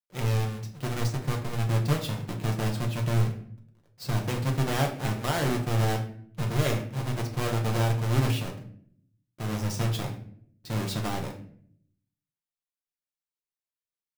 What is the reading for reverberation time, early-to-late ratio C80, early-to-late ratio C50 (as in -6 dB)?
0.60 s, 13.0 dB, 9.0 dB